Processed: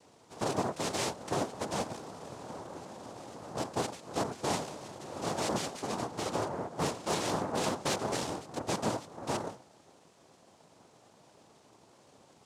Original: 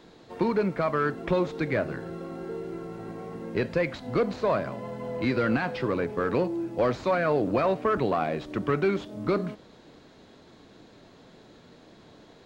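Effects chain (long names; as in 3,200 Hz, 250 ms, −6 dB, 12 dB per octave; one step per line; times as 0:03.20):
hum removal 126.1 Hz, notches 6
cochlear-implant simulation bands 2
0:05.88–0:08.13: highs frequency-modulated by the lows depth 0.35 ms
level −7.5 dB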